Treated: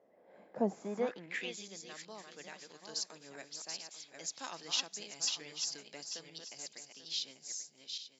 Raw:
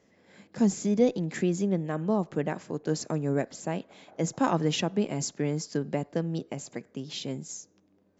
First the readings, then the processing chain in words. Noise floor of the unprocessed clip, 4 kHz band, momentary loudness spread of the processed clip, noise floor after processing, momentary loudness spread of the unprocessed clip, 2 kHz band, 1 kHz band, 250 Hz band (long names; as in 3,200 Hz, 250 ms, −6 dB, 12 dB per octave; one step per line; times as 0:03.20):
−66 dBFS, +1.5 dB, 14 LU, −66 dBFS, 13 LU, −5.0 dB, −12.5 dB, −18.0 dB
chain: feedback delay that plays each chunk backwards 420 ms, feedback 43%, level −5 dB
band-pass filter sweep 630 Hz → 4,700 Hz, 0:00.67–0:01.71
level +4 dB